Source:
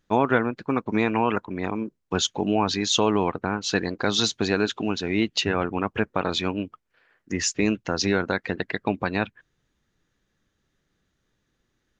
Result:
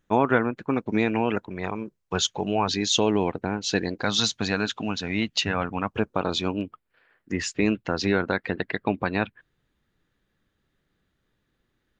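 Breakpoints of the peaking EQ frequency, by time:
peaking EQ -10 dB 0.55 oct
4.7 kHz
from 0.74 s 1.1 kHz
from 1.50 s 270 Hz
from 2.68 s 1.2 kHz
from 4.03 s 370 Hz
from 5.94 s 1.9 kHz
from 6.61 s 6.1 kHz

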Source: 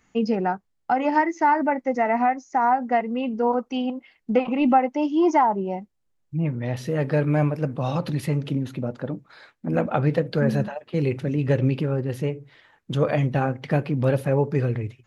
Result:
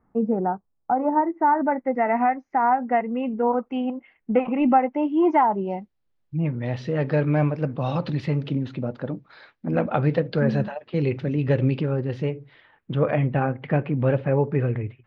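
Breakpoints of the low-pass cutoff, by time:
low-pass 24 dB/octave
1.27 s 1.2 kHz
2.10 s 2.5 kHz
5.19 s 2.5 kHz
5.68 s 4.7 kHz
12.30 s 4.7 kHz
12.98 s 2.8 kHz

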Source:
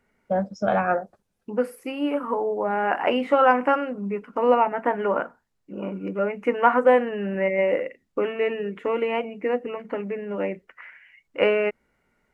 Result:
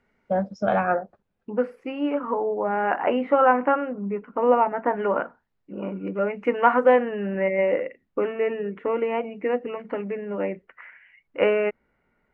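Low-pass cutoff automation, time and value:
4.9 kHz
from 0.83 s 2.6 kHz
from 2.95 s 1.9 kHz
from 4.97 s 3.2 kHz
from 6.27 s 4.5 kHz
from 6.96 s 2.7 kHz
from 8.24 s 2 kHz
from 9.25 s 3.6 kHz
from 10.17 s 2.5 kHz

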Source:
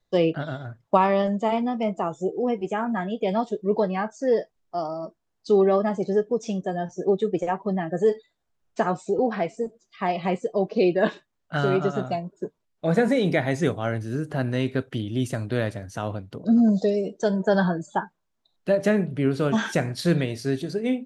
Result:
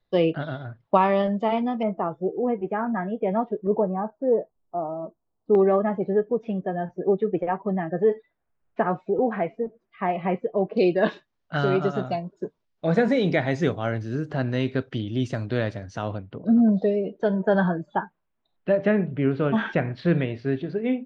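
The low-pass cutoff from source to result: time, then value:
low-pass 24 dB/octave
4.3 kHz
from 1.83 s 2 kHz
from 3.67 s 1.1 kHz
from 5.55 s 2.4 kHz
from 10.77 s 5.6 kHz
from 16.18 s 3 kHz

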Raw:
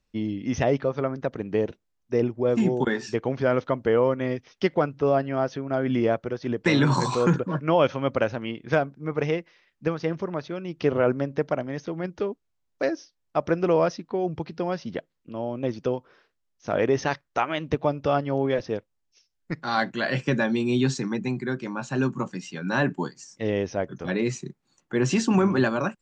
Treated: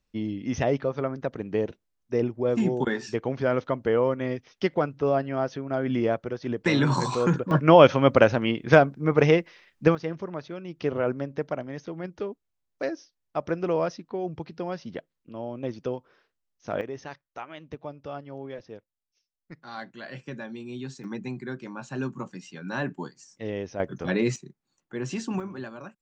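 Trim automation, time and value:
-2 dB
from 7.51 s +6.5 dB
from 9.95 s -4.5 dB
from 16.81 s -14 dB
from 21.04 s -6.5 dB
from 23.80 s +1 dB
from 24.36 s -9 dB
from 25.40 s -15.5 dB

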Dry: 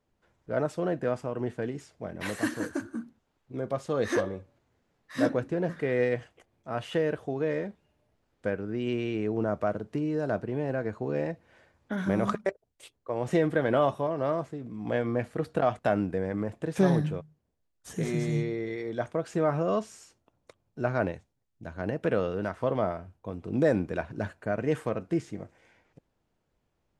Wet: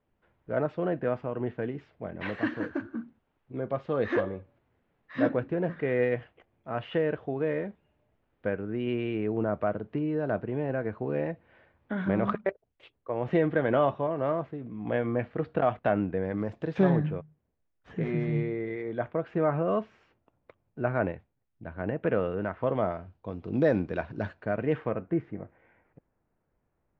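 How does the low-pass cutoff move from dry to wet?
low-pass 24 dB/octave
16.17 s 3.1 kHz
16.53 s 5.9 kHz
16.94 s 2.7 kHz
22.55 s 2.7 kHz
23.19 s 4.6 kHz
24.33 s 4.6 kHz
25.11 s 2.1 kHz

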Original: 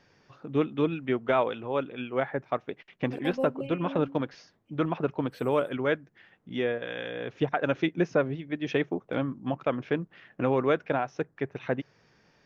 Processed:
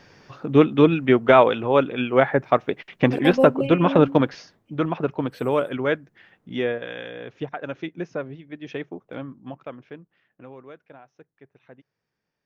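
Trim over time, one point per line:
4.25 s +11 dB
4.74 s +4 dB
6.68 s +4 dB
7.58 s -5 dB
9.41 s -5 dB
9.96 s -12.5 dB
10.70 s -19 dB

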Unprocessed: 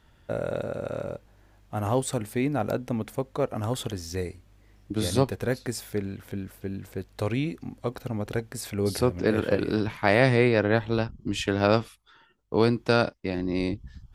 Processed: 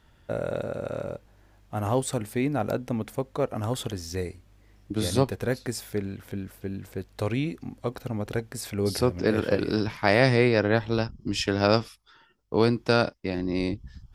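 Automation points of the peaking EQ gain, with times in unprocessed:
peaking EQ 5.2 kHz 0.25 oct
8.58 s +1 dB
9.58 s +12.5 dB
11.81 s +12.5 dB
12.62 s +5 dB

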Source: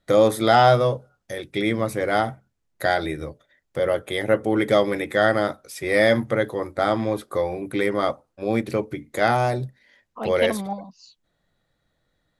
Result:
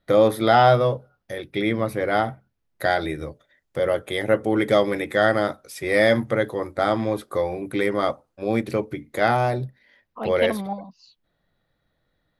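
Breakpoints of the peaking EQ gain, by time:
peaking EQ 7.4 kHz 0.76 oct
2.24 s -12.5 dB
3.24 s -2 dB
8.72 s -2 dB
9.59 s -12 dB

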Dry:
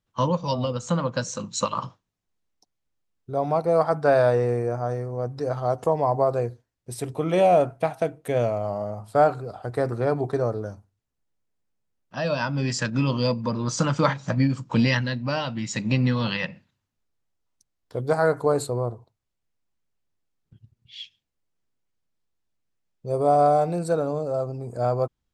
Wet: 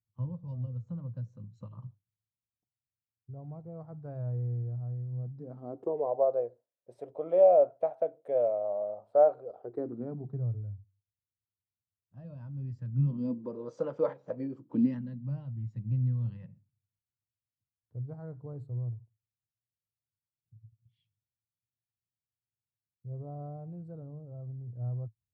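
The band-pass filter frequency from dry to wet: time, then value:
band-pass filter, Q 5
5.07 s 110 Hz
6.17 s 570 Hz
9.44 s 570 Hz
10.60 s 100 Hz
12.85 s 100 Hz
13.60 s 480 Hz
14.34 s 480 Hz
15.53 s 110 Hz

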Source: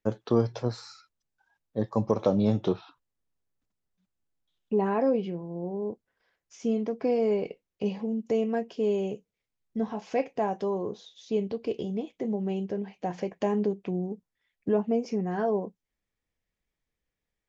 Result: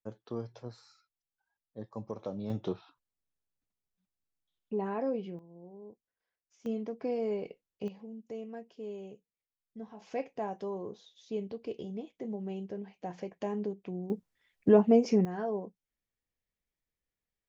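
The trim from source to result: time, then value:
-14.5 dB
from 2.50 s -8 dB
from 5.39 s -17 dB
from 6.66 s -7.5 dB
from 7.88 s -15 dB
from 10.00 s -8 dB
from 14.10 s +4 dB
from 15.25 s -7 dB

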